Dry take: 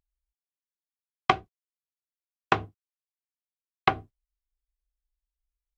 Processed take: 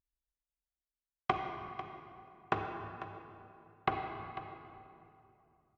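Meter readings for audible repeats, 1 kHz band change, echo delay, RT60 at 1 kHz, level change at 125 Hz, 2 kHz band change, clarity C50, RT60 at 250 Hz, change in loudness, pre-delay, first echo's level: 1, -7.5 dB, 0.496 s, 2.6 s, -6.5 dB, -10.0 dB, 3.5 dB, 3.1 s, -11.5 dB, 37 ms, -13.0 dB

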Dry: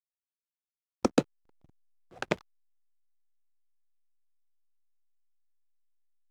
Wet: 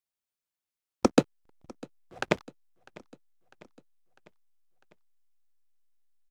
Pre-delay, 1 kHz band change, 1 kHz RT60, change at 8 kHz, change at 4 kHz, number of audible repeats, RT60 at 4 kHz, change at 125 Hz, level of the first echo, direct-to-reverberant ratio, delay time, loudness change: none, +3.5 dB, none, +3.5 dB, +3.5 dB, 3, none, +3.5 dB, -23.0 dB, none, 0.65 s, +3.0 dB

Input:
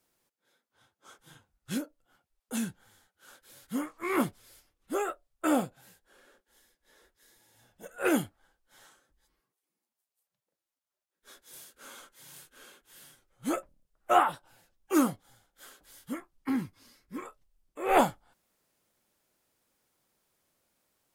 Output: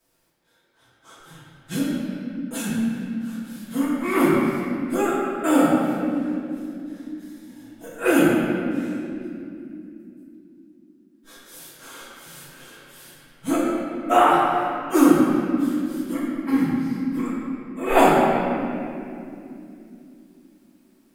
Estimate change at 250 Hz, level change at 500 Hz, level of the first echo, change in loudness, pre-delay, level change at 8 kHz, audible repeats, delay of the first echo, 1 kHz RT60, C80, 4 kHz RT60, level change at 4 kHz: +13.5 dB, +11.0 dB, none, +9.0 dB, 3 ms, +7.0 dB, none, none, 2.2 s, -0.5 dB, 1.8 s, +9.0 dB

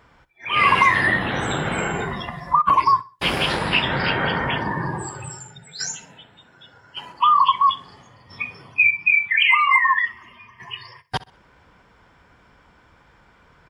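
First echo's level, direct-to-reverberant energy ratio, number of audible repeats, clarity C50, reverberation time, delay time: -19.5 dB, none, 2, none, none, 64 ms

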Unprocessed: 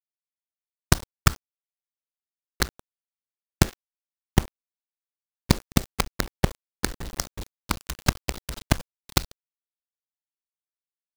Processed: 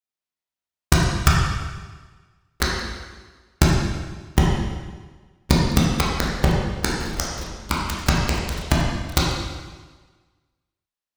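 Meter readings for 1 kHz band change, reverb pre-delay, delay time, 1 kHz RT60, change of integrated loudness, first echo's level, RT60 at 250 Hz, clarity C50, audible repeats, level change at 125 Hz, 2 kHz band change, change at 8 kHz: +7.0 dB, 5 ms, none, 1.4 s, +5.0 dB, none, 1.4 s, -0.5 dB, none, +6.5 dB, +6.0 dB, +2.5 dB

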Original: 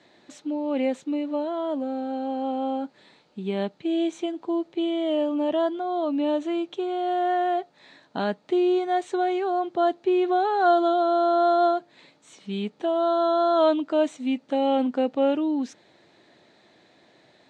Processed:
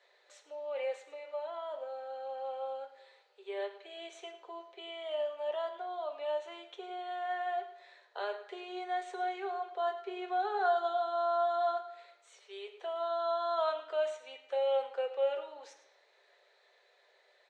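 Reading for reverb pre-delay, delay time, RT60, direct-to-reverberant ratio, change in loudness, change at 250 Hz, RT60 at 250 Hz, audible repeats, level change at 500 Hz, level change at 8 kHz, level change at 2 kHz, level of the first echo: 3 ms, 0.105 s, 0.95 s, 2.0 dB, -11.0 dB, -28.5 dB, 0.85 s, 1, -10.5 dB, n/a, -6.5 dB, -15.5 dB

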